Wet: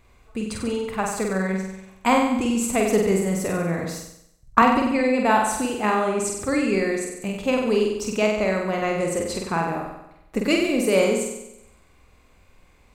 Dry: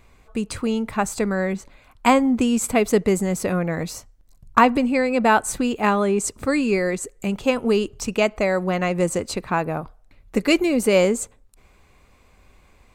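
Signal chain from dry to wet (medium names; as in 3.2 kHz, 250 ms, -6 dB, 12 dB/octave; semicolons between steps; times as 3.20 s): on a send: flutter echo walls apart 8.1 m, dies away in 0.88 s; 3.84–4.62 s: on the sum: three bands expanded up and down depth 40%; trim -4 dB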